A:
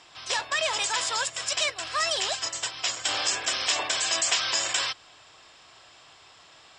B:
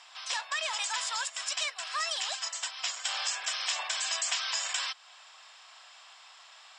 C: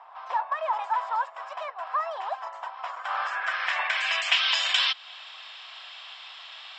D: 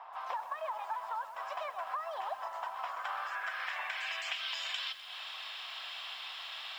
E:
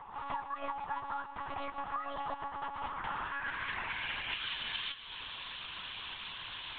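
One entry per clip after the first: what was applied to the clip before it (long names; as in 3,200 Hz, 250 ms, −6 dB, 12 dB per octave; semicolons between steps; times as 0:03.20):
high-pass filter 730 Hz 24 dB per octave; downward compressor 1.5 to 1, threshold −39 dBFS, peak gain reduction 7 dB
low-pass filter sweep 930 Hz → 3,400 Hz, 0:02.75–0:04.61; level +6 dB
downward compressor 12 to 1, threshold −35 dBFS, peak gain reduction 17.5 dB; feedback echo at a low word length 127 ms, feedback 55%, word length 9 bits, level −12 dB
one-pitch LPC vocoder at 8 kHz 280 Hz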